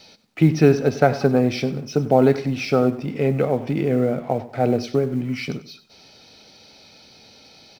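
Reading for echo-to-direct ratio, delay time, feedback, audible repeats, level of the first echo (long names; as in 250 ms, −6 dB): −15.5 dB, 96 ms, 31%, 2, −16.0 dB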